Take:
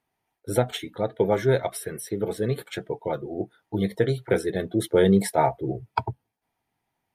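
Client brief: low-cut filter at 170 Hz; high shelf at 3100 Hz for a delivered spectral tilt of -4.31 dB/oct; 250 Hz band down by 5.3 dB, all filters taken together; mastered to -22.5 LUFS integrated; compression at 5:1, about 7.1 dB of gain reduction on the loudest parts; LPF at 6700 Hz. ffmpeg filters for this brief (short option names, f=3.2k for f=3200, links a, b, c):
-af "highpass=170,lowpass=6.7k,equalizer=f=250:t=o:g=-6.5,highshelf=f=3.1k:g=6.5,acompressor=threshold=-24dB:ratio=5,volume=9.5dB"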